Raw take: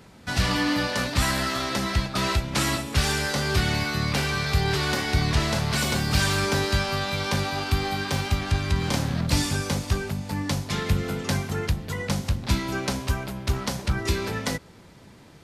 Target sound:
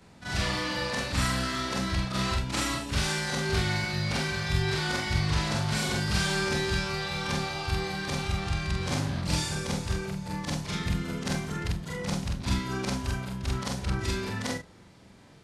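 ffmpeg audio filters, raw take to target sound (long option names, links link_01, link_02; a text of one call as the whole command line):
ffmpeg -i in.wav -filter_complex "[0:a]afftfilt=real='re':imag='-im':win_size=4096:overlap=0.75,lowpass=frequency=11000:width=0.5412,lowpass=frequency=11000:width=1.3066,aeval=exprs='0.211*(cos(1*acos(clip(val(0)/0.211,-1,1)))-cos(1*PI/2))+0.0237*(cos(3*acos(clip(val(0)/0.211,-1,1)))-cos(3*PI/2))':channel_layout=same,asplit=2[link_01][link_02];[link_02]asoftclip=type=tanh:threshold=-28dB,volume=-8dB[link_03];[link_01][link_03]amix=inputs=2:normalize=0,volume=1dB" out.wav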